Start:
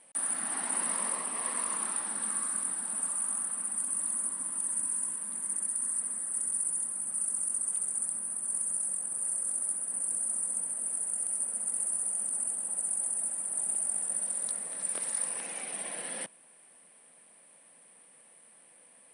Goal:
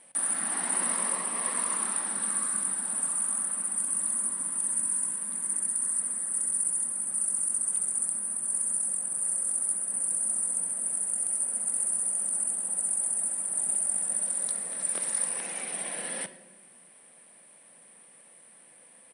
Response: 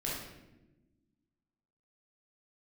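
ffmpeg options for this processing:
-filter_complex "[0:a]asplit=2[a][b];[b]aecho=1:1:5.3:0.65[c];[1:a]atrim=start_sample=2205[d];[c][d]afir=irnorm=-1:irlink=0,volume=-14.5dB[e];[a][e]amix=inputs=2:normalize=0,volume=2dB"

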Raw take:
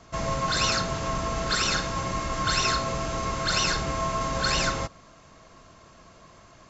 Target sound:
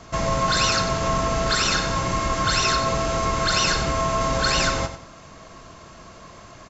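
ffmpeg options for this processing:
-filter_complex "[0:a]asplit=2[a][b];[b]alimiter=limit=-23.5dB:level=0:latency=1:release=340,volume=3dB[c];[a][c]amix=inputs=2:normalize=0,aecho=1:1:92|184|276|368:0.282|0.0958|0.0326|0.0111"

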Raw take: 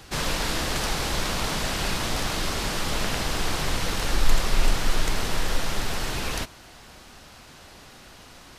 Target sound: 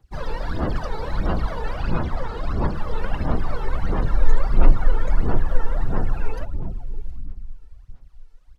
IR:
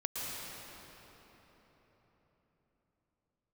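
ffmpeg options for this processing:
-filter_complex "[0:a]asettb=1/sr,asplit=3[a][b][c];[a]atrim=end=1.774[d];[b]atrim=start=1.77:end=2.75,asetpts=PTS-STARTPTS,afade=t=in:d=0.004:c=qsin,afade=t=out:st=0.976:d=0.004:c=qsin,lowpass=9.3k[e];[c]atrim=start=2.746[f];[d][e]acrossfade=d=0.004:c1=hsin:c2=qsin[g];[g][f]acrossfade=d=0.004:c1=qsin:c2=hsin,aecho=1:1:721:0.266,asplit=2[h][i];[1:a]atrim=start_sample=2205,lowpass=2k[j];[i][j]afir=irnorm=-1:irlink=0,volume=-5dB[k];[h][k]amix=inputs=2:normalize=0,afftdn=nr=23:nf=-27,aphaser=in_gain=1:out_gain=1:delay=2.3:decay=0.68:speed=1.5:type=sinusoidal,volume=-6dB"

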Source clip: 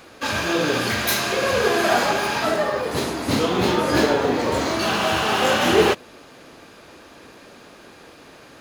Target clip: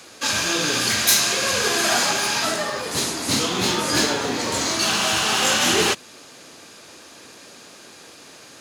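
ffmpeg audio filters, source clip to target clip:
-filter_complex "[0:a]highpass=88,equalizer=f=7.4k:w=0.55:g=14,acrossover=split=390|670|4800[a][b][c][d];[b]acompressor=threshold=-38dB:ratio=6[e];[a][e][c][d]amix=inputs=4:normalize=0,volume=-2.5dB"

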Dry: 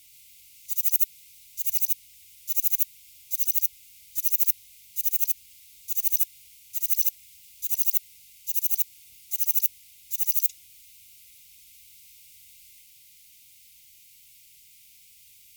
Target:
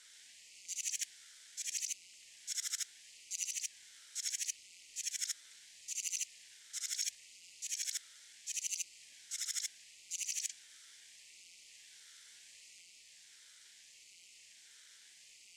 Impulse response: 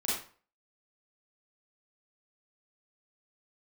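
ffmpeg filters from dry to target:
-af "highpass=330,equalizer=f=440:t=q:w=4:g=7,equalizer=f=760:t=q:w=4:g=9,equalizer=f=1.9k:t=q:w=4:g=-9,equalizer=f=3.6k:t=q:w=4:g=-9,equalizer=f=5.7k:t=q:w=4:g=-5,lowpass=f=7.1k:w=0.5412,lowpass=f=7.1k:w=1.3066,aeval=exprs='val(0)*sin(2*PI*420*n/s+420*0.8/0.74*sin(2*PI*0.74*n/s))':c=same,volume=7.5dB"

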